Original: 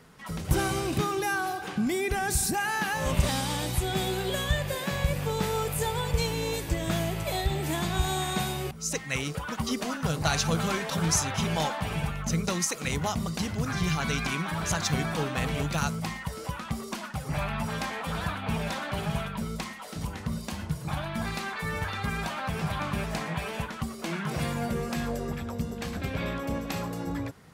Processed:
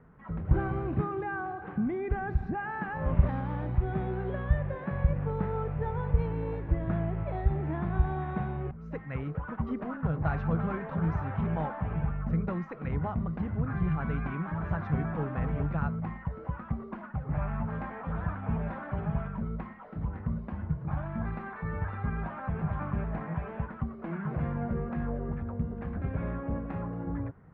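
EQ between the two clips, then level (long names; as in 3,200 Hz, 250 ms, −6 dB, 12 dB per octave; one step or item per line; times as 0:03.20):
low-pass filter 1,700 Hz 24 dB per octave
low-shelf EQ 170 Hz +9.5 dB
−5.5 dB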